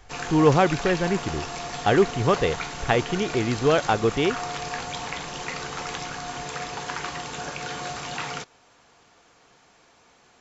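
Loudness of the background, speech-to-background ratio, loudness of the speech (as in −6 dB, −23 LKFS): −32.0 LKFS, 9.0 dB, −23.0 LKFS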